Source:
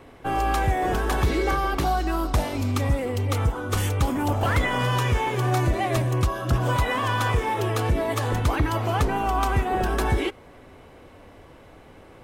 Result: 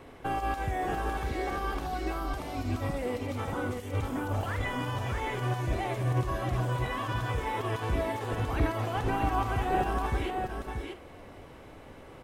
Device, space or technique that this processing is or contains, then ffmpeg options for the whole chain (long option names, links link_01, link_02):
de-esser from a sidechain: -filter_complex "[0:a]asettb=1/sr,asplit=3[link_01][link_02][link_03];[link_01]atrim=end=2.904[link_04];[link_02]atrim=start=2.9:end=3.57,asetpts=PTS-STARTPTS,afade=type=in:duration=0.004:curve=qsin,afade=type=out:start_time=0.666:duration=0.004:curve=qsin,highpass=150[link_05];[link_03]atrim=start=3.566[link_06];[link_04][link_05]acrossfade=duration=0.004:curve1=hsin:curve2=qsin[link_07];[link_07][link_06]acrossfade=duration=0.004:curve1=qsin:curve2=hsin,asplit=2[link_08][link_09];[link_09]highpass=frequency=4800:width=0.5412,highpass=frequency=4800:width=1.3066,apad=whole_len=539747[link_10];[link_08][link_10]sidechaincompress=threshold=-51dB:ratio=8:attack=1.1:release=37,asplit=2[link_11][link_12];[link_12]adelay=47,volume=-12.5dB[link_13];[link_11][link_13]amix=inputs=2:normalize=0,aecho=1:1:633:0.562,volume=-2dB"